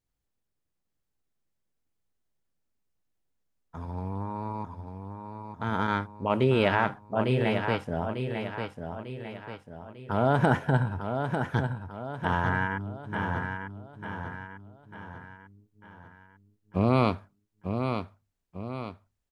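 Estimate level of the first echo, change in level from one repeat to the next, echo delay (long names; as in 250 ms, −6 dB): −6.5 dB, −6.5 dB, 897 ms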